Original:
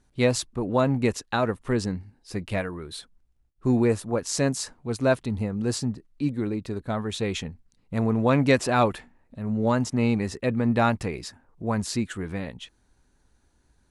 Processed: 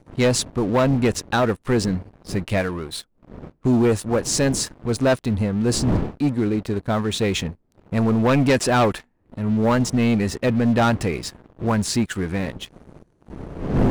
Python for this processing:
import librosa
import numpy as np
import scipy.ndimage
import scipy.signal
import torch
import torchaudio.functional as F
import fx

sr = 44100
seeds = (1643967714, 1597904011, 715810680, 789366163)

y = fx.dmg_wind(x, sr, seeds[0], corner_hz=280.0, level_db=-37.0)
y = fx.leveller(y, sr, passes=3)
y = y * librosa.db_to_amplitude(-4.0)